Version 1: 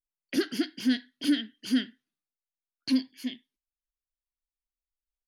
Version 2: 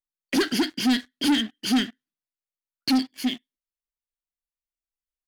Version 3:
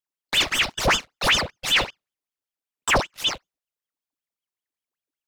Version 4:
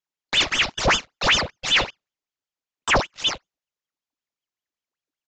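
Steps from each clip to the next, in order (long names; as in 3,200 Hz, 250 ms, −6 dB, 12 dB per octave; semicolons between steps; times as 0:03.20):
leveller curve on the samples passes 3
ring modulator whose carrier an LFO sweeps 1,800 Hz, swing 85%, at 5.2 Hz; level +4 dB
downsampling to 16,000 Hz; level +1 dB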